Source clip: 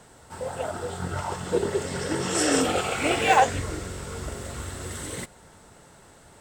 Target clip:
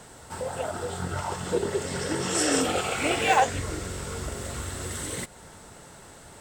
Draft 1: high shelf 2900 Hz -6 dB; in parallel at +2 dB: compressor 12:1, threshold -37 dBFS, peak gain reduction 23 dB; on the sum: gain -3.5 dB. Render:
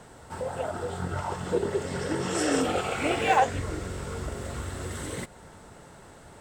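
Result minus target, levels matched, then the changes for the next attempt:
8000 Hz band -5.5 dB
change: high shelf 2900 Hz +2.5 dB

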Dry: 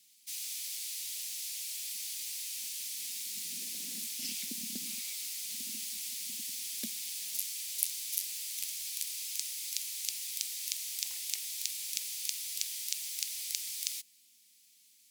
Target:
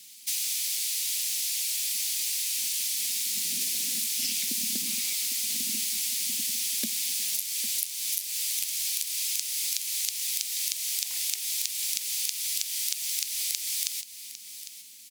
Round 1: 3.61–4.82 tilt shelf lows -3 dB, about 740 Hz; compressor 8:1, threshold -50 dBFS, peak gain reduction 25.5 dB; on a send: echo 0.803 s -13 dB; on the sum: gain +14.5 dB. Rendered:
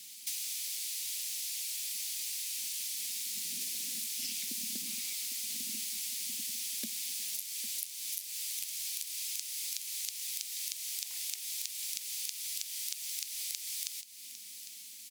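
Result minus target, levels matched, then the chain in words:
compressor: peak gain reduction +8.5 dB
3.61–4.82 tilt shelf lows -3 dB, about 740 Hz; compressor 8:1, threshold -40.5 dBFS, peak gain reduction 17 dB; on a send: echo 0.803 s -13 dB; on the sum: gain +14.5 dB

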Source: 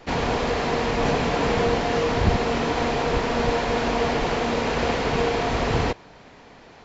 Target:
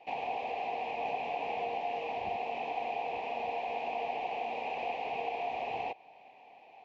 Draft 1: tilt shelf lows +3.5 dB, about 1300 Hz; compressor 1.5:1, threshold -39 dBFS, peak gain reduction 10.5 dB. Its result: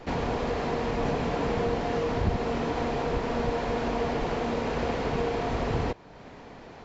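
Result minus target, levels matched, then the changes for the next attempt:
1000 Hz band -5.5 dB
add first: double band-pass 1400 Hz, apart 1.7 oct

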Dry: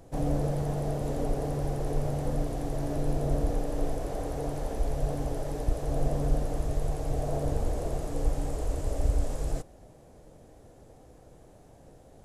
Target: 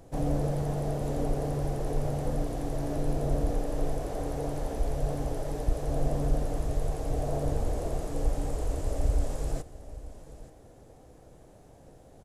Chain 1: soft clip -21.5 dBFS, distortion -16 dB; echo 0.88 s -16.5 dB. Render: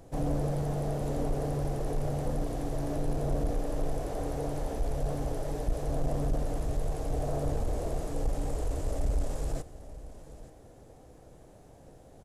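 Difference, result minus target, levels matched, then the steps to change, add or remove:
soft clip: distortion +18 dB
change: soft clip -10 dBFS, distortion -34 dB

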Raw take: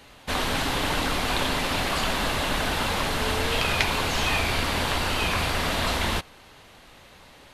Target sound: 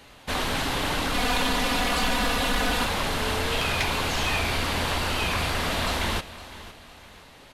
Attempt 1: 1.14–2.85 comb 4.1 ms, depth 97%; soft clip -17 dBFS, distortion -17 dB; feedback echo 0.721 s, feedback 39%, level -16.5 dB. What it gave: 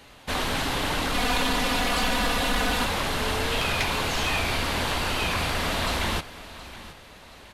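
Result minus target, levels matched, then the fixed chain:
echo 0.212 s late
1.14–2.85 comb 4.1 ms, depth 97%; soft clip -17 dBFS, distortion -17 dB; feedback echo 0.509 s, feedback 39%, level -16.5 dB

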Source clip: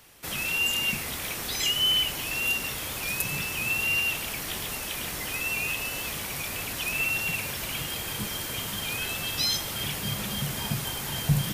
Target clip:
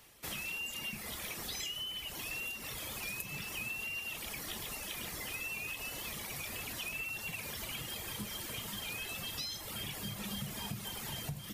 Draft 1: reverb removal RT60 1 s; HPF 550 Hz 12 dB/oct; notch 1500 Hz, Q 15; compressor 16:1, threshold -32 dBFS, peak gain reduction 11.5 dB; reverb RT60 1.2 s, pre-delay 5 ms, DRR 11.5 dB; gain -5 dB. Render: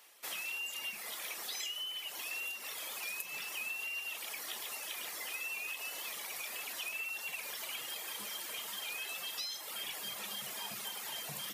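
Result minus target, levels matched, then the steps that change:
500 Hz band -3.0 dB
remove: HPF 550 Hz 12 dB/oct

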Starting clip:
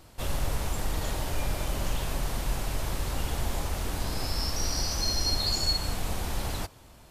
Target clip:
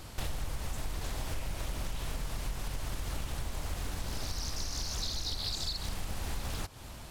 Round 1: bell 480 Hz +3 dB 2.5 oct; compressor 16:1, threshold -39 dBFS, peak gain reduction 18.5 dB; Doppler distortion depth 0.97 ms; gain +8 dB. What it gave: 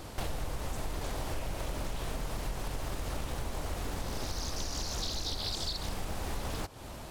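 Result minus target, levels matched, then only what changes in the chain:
500 Hz band +5.0 dB
change: bell 480 Hz -4 dB 2.5 oct

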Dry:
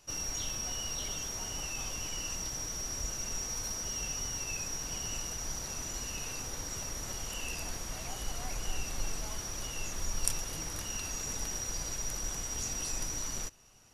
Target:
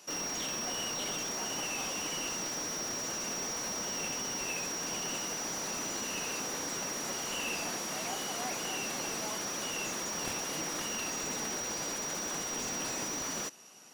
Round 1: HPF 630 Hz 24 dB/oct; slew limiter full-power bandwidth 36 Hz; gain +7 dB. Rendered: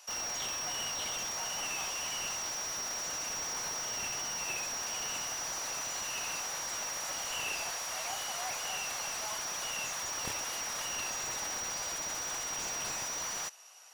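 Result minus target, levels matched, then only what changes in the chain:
250 Hz band -11.0 dB
change: HPF 190 Hz 24 dB/oct

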